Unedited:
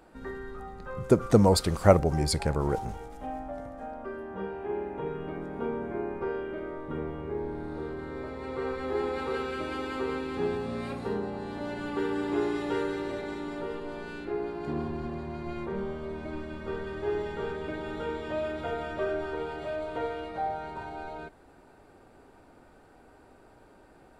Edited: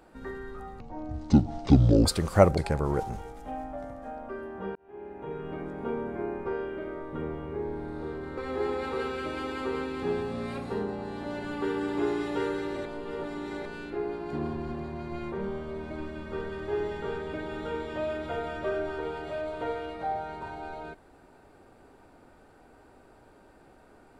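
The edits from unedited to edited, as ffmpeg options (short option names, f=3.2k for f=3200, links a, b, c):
-filter_complex "[0:a]asplit=8[a][b][c][d][e][f][g][h];[a]atrim=end=0.804[i];[b]atrim=start=0.8:end=1.54,asetpts=PTS-STARTPTS,asetrate=26019,aresample=44100[j];[c]atrim=start=1.536:end=2.062[k];[d]atrim=start=2.328:end=4.51,asetpts=PTS-STARTPTS,afade=t=out:st=2.178:d=0.004:c=hsin[l];[e]atrim=start=4.51:end=8.132,asetpts=PTS-STARTPTS,afade=t=in:d=0.78[m];[f]atrim=start=8.718:end=13.202[n];[g]atrim=start=13.198:end=14.002,asetpts=PTS-STARTPTS,areverse[o];[h]atrim=start=13.998[p];[i][j]acrossfade=d=0.004:c1=hsin:c2=hsin[q];[q][k]acrossfade=d=0.004:c1=hsin:c2=hsin[r];[l][m]concat=n=2:v=0:a=1[s];[r][s]acrossfade=d=0.004:c1=hsin:c2=hsin[t];[t][n]acrossfade=d=0.004:c1=hsin:c2=hsin[u];[u][o]acrossfade=d=0.004:c1=hsin:c2=hsin[v];[v][p]acrossfade=d=0.004:c1=hsin:c2=hsin"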